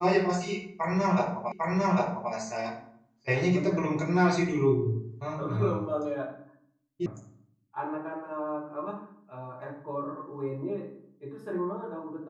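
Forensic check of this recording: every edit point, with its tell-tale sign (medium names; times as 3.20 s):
1.52 s: repeat of the last 0.8 s
7.06 s: sound stops dead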